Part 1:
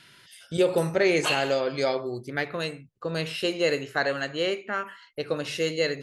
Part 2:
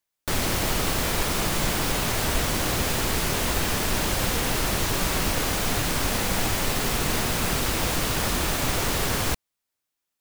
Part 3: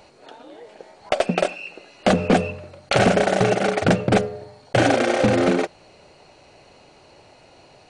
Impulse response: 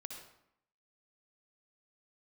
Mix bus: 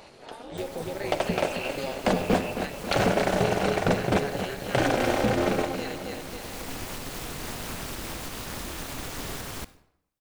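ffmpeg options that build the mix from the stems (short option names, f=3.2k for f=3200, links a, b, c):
-filter_complex "[0:a]highpass=150,volume=-5dB,asplit=3[a][b][c];[b]volume=-6dB[d];[1:a]alimiter=limit=-18.5dB:level=0:latency=1:release=322,adelay=300,volume=-4.5dB,asplit=2[e][f];[f]volume=-8.5dB[g];[2:a]volume=2.5dB,asplit=3[h][i][j];[i]volume=-9dB[k];[j]volume=-15dB[l];[c]apad=whole_len=463295[m];[e][m]sidechaincompress=threshold=-37dB:ratio=8:attack=9.1:release=913[n];[a][h]amix=inputs=2:normalize=0,acompressor=threshold=-30dB:ratio=2,volume=0dB[o];[3:a]atrim=start_sample=2205[p];[g][k]amix=inputs=2:normalize=0[q];[q][p]afir=irnorm=-1:irlink=0[r];[d][l]amix=inputs=2:normalize=0,aecho=0:1:270|540|810|1080|1350|1620|1890|2160:1|0.56|0.314|0.176|0.0983|0.0551|0.0308|0.0173[s];[n][o][r][s]amix=inputs=4:normalize=0,tremolo=f=270:d=0.75"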